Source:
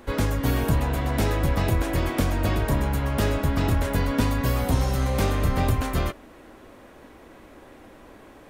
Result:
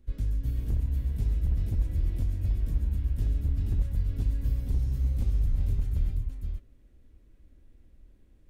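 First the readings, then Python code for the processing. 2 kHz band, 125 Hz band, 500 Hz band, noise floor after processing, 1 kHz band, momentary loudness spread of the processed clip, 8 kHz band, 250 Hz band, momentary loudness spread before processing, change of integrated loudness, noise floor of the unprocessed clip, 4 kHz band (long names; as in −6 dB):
−27.0 dB, −4.5 dB, −24.0 dB, −57 dBFS, below −30 dB, 3 LU, below −20 dB, −16.0 dB, 2 LU, −6.0 dB, −48 dBFS, below −20 dB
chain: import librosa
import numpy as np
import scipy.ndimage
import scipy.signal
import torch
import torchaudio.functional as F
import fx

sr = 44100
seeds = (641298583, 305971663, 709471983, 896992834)

y = fx.tone_stack(x, sr, knobs='10-0-1')
y = fx.echo_multitap(y, sr, ms=(54, 140, 480), db=(-17.0, -9.5, -5.0))
y = 10.0 ** (-24.0 / 20.0) * (np.abs((y / 10.0 ** (-24.0 / 20.0) + 3.0) % 4.0 - 2.0) - 1.0)
y = fx.low_shelf(y, sr, hz=83.0, db=11.0)
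y = y * librosa.db_to_amplitude(-2.0)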